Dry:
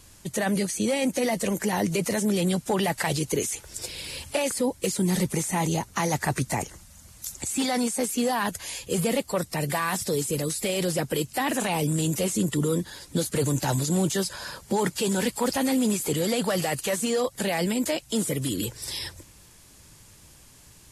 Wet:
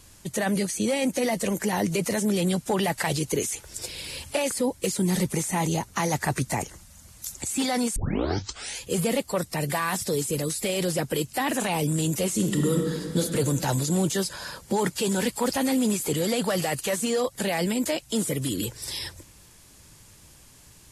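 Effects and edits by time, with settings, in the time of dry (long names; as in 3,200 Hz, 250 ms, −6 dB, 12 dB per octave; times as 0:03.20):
0:07.96: tape start 0.85 s
0:12.28–0:13.21: thrown reverb, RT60 2.3 s, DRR 3 dB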